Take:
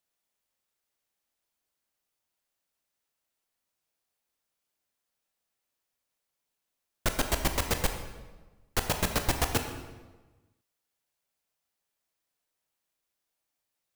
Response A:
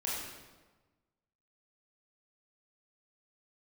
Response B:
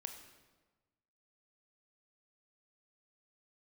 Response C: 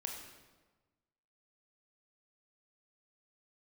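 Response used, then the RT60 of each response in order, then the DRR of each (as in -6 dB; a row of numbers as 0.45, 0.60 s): B; 1.3, 1.3, 1.3 s; -6.5, 5.5, 1.0 dB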